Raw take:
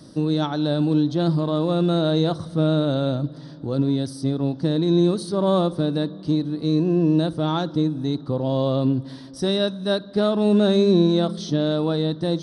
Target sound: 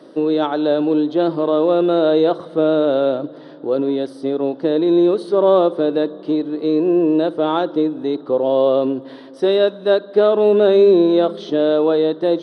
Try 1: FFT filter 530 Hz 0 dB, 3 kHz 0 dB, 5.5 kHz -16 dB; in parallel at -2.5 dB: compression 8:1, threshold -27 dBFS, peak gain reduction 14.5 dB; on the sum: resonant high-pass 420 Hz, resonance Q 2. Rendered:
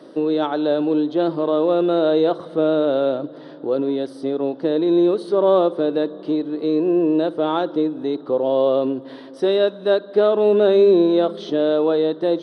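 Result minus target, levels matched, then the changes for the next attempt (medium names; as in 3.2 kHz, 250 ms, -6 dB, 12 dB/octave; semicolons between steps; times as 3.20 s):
compression: peak gain reduction +9 dB
change: compression 8:1, threshold -16.5 dBFS, peak gain reduction 5 dB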